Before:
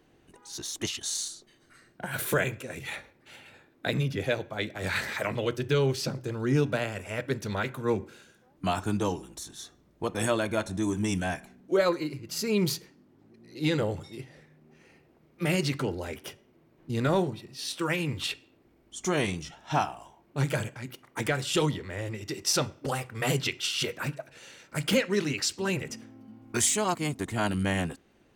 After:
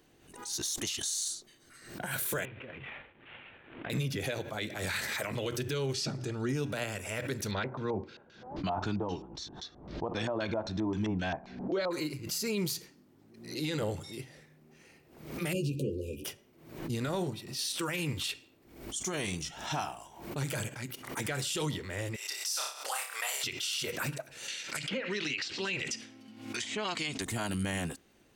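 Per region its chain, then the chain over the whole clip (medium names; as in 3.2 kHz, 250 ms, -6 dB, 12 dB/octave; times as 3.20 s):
2.45–3.90 s: CVSD coder 16 kbps + compression, threshold -40 dBFS
5.93–6.49 s: low-pass 7.1 kHz + comb of notches 520 Hz
7.51–11.91 s: LFO low-pass square 3.8 Hz 830–4700 Hz + distance through air 160 m
15.53–16.25 s: brick-wall FIR band-stop 570–2400 Hz + resonant high shelf 2.5 kHz -13.5 dB, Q 1.5 + doubling 14 ms -4 dB
22.16–23.44 s: high-pass 710 Hz 24 dB/octave + flutter echo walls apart 5 m, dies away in 0.35 s
24.48–27.22 s: frequency weighting D + low-pass that closes with the level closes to 920 Hz, closed at -15 dBFS + compression, threshold -28 dBFS
whole clip: treble shelf 3.8 kHz +10 dB; peak limiter -22 dBFS; swell ahead of each attack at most 84 dB/s; trim -2.5 dB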